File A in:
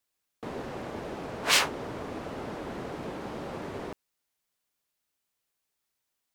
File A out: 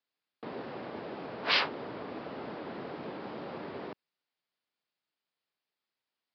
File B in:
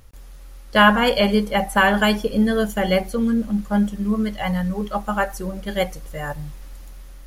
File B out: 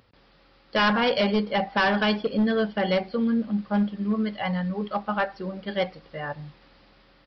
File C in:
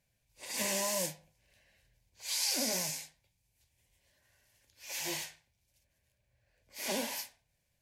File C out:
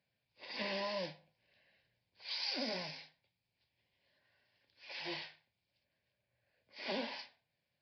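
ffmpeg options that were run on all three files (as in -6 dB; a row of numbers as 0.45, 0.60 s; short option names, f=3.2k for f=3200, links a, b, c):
-af "highpass=150,aresample=11025,asoftclip=type=hard:threshold=-14.5dB,aresample=44100,volume=-3dB"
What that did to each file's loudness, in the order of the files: -4.0, -5.0, -6.5 LU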